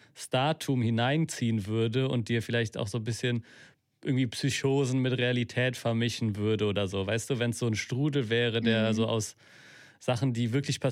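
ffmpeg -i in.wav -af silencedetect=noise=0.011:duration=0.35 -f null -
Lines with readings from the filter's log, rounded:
silence_start: 3.40
silence_end: 4.05 | silence_duration: 0.65
silence_start: 9.31
silence_end: 10.03 | silence_duration: 0.73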